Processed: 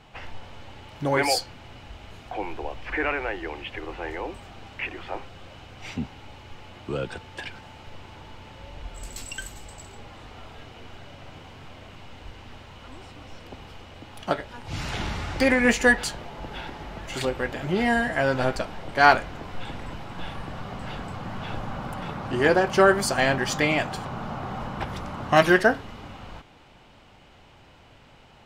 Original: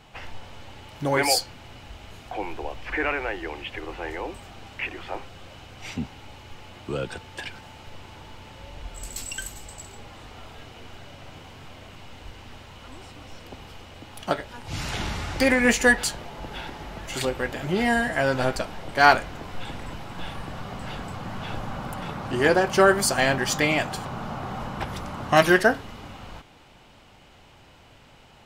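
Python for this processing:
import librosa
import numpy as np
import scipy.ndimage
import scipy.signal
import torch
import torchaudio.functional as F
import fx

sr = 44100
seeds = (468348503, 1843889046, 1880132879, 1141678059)

y = fx.high_shelf(x, sr, hz=6600.0, db=-8.5)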